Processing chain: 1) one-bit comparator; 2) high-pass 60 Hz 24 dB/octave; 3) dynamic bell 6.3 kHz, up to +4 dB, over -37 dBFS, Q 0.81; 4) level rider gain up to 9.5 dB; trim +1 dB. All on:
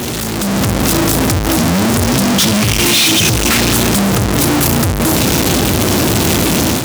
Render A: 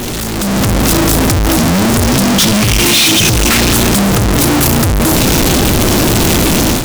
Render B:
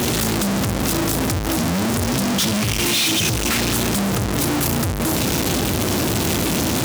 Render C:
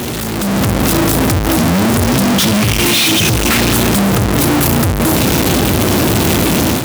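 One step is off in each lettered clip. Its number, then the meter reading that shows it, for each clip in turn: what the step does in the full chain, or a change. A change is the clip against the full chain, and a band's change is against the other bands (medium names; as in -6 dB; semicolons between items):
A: 2, crest factor change -6.5 dB; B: 4, loudness change -7.5 LU; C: 3, 8 kHz band -3.0 dB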